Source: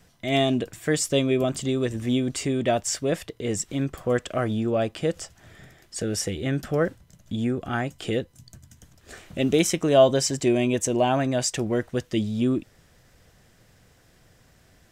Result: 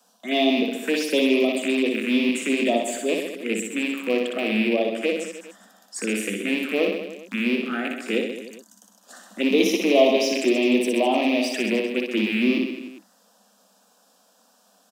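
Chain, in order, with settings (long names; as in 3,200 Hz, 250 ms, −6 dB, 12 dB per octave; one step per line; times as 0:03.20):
loose part that buzzes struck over −30 dBFS, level −17 dBFS
in parallel at −7.5 dB: soft clipping −20 dBFS, distortion −11 dB
on the sum: phaser swept by the level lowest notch 340 Hz, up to 1,500 Hz, full sweep at −17.5 dBFS
Chebyshev high-pass filter 190 Hz, order 10
reverse bouncing-ball delay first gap 60 ms, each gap 1.15×, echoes 5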